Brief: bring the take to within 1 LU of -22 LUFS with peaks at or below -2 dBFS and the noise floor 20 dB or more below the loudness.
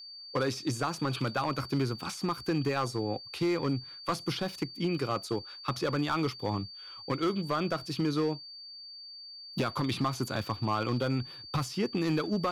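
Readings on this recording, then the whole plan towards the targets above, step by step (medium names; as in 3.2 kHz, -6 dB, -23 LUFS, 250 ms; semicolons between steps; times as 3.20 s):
clipped samples 1.3%; clipping level -22.5 dBFS; steady tone 4.6 kHz; tone level -44 dBFS; loudness -32.0 LUFS; peak level -22.5 dBFS; loudness target -22.0 LUFS
-> clip repair -22.5 dBFS; band-stop 4.6 kHz, Q 30; trim +10 dB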